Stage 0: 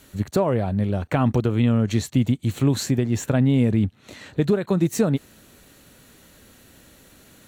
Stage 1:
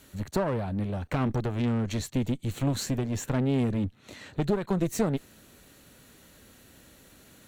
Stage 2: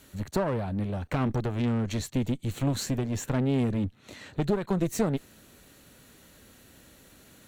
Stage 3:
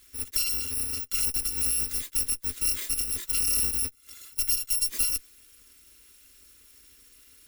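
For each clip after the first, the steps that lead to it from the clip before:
one-sided soft clipper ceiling −24.5 dBFS; level −3.5 dB
no processing that can be heard
samples in bit-reversed order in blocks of 256 samples; phaser with its sweep stopped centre 320 Hz, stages 4

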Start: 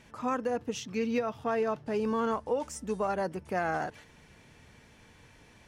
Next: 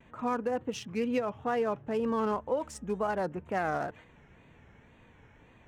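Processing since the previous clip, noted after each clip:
adaptive Wiener filter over 9 samples
tape wow and flutter 110 cents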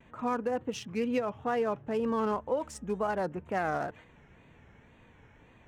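no processing that can be heard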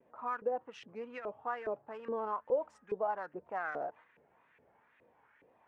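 auto-filter band-pass saw up 2.4 Hz 430–2,000 Hz

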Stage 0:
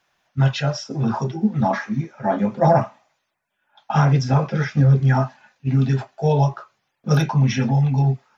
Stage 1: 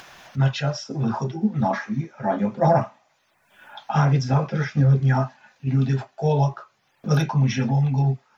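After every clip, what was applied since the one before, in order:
upward compression, threshold −24 dBFS
level −2.5 dB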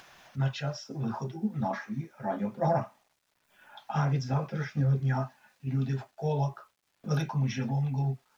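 bit-depth reduction 10 bits, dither none
level −9 dB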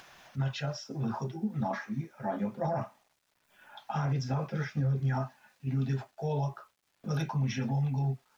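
brickwall limiter −23 dBFS, peak gain reduction 7.5 dB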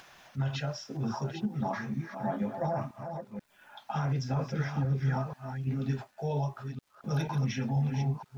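delay that plays each chunk backwards 485 ms, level −7.5 dB

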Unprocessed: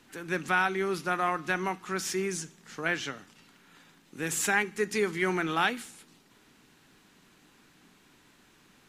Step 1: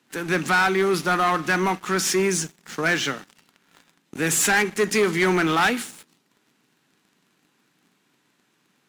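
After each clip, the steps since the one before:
high-pass filter 120 Hz 24 dB per octave
leveller curve on the samples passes 3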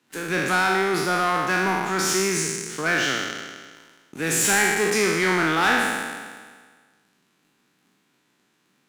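peak hold with a decay on every bin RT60 1.61 s
level −4 dB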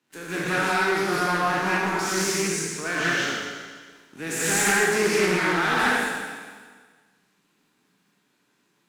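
reverb whose tail is shaped and stops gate 230 ms rising, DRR −5 dB
highs frequency-modulated by the lows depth 0.23 ms
level −7.5 dB

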